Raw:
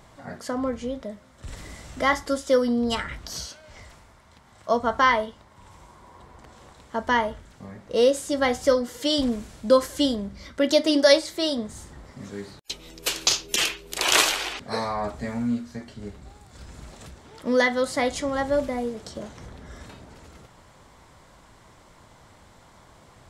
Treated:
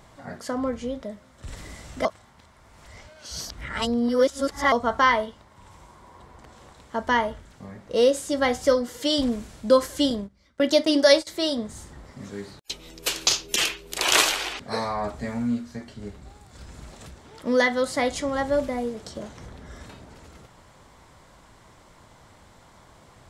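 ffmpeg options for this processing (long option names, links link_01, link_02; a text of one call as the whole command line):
ffmpeg -i in.wav -filter_complex "[0:a]asettb=1/sr,asplit=3[link_01][link_02][link_03];[link_01]atrim=end=10.104[link_04];[link_02]atrim=start=10.1:end=11.27,asetpts=PTS-STARTPTS,afade=type=in:duration=0.004:curve=qsin,afade=type=out:start_time=1.166:duration=0.004:curve=qsin,agate=range=-19dB:threshold=-31dB:ratio=16:release=100:detection=peak[link_05];[link_03]atrim=start=11.266[link_06];[link_04][link_05]acrossfade=duration=0.004:curve1=hsin:curve2=qsin[link_07];[link_07][link_06]acrossfade=duration=0.004:curve1=qsin:curve2=hsin,asplit=3[link_08][link_09][link_10];[link_08]atrim=end=2.052[link_11];[link_09]atrim=start=2.048:end=4.722,asetpts=PTS-STARTPTS,areverse[link_12];[link_10]atrim=start=4.718[link_13];[link_11][link_12]acrossfade=duration=0.004:curve1=hsin:curve2=hsin[link_14];[link_14][link_13]acrossfade=duration=0.004:curve1=hsin:curve2=hsin" out.wav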